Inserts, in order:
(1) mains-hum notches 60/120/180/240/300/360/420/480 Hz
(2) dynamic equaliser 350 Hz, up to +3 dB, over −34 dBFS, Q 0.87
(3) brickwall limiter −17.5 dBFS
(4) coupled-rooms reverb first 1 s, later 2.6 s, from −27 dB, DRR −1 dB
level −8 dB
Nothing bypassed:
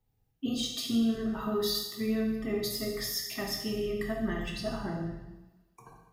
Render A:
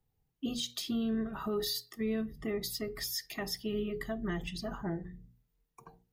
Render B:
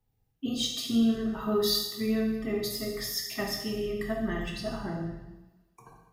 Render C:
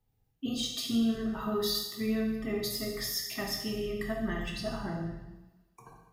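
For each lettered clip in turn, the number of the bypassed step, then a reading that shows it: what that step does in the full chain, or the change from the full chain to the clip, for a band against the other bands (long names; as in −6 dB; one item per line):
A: 4, change in integrated loudness −4.0 LU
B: 3, change in momentary loudness spread +2 LU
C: 2, 500 Hz band −1.5 dB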